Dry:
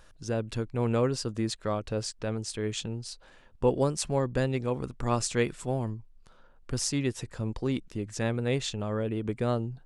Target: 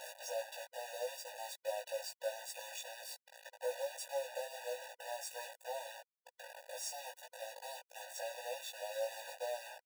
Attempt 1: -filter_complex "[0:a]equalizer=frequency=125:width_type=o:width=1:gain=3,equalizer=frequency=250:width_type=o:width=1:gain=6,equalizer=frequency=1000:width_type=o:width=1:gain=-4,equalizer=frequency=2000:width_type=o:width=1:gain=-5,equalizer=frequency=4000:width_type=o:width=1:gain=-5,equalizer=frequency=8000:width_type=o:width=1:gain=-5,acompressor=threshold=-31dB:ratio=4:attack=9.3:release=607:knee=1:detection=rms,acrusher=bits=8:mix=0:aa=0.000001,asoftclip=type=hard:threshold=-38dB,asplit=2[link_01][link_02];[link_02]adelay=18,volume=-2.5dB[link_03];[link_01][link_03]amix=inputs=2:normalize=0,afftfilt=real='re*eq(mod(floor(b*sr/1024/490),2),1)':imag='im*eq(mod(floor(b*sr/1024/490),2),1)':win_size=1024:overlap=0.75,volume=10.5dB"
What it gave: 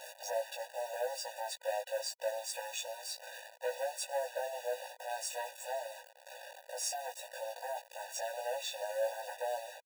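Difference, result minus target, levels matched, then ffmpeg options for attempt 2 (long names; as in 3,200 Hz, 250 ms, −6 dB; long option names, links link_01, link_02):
downward compressor: peak gain reduction −7 dB
-filter_complex "[0:a]equalizer=frequency=125:width_type=o:width=1:gain=3,equalizer=frequency=250:width_type=o:width=1:gain=6,equalizer=frequency=1000:width_type=o:width=1:gain=-4,equalizer=frequency=2000:width_type=o:width=1:gain=-5,equalizer=frequency=4000:width_type=o:width=1:gain=-5,equalizer=frequency=8000:width_type=o:width=1:gain=-5,acompressor=threshold=-40.5dB:ratio=4:attack=9.3:release=607:knee=1:detection=rms,acrusher=bits=8:mix=0:aa=0.000001,asoftclip=type=hard:threshold=-38dB,asplit=2[link_01][link_02];[link_02]adelay=18,volume=-2.5dB[link_03];[link_01][link_03]amix=inputs=2:normalize=0,afftfilt=real='re*eq(mod(floor(b*sr/1024/490),2),1)':imag='im*eq(mod(floor(b*sr/1024/490),2),1)':win_size=1024:overlap=0.75,volume=10.5dB"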